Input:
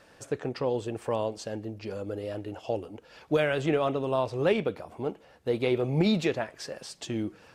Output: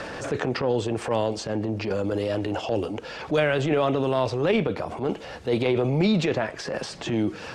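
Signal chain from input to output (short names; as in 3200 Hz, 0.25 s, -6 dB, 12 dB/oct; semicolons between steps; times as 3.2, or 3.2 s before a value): LPF 7100 Hz 12 dB/oct; transient shaper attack -11 dB, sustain +5 dB; three-band squash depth 70%; gain +5.5 dB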